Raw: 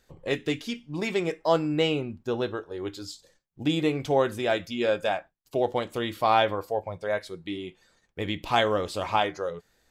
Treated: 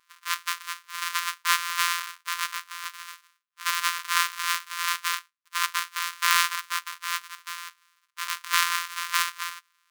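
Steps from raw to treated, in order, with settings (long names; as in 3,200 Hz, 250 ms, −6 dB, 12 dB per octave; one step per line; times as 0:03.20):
samples sorted by size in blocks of 256 samples
linear-phase brick-wall high-pass 950 Hz
level +5.5 dB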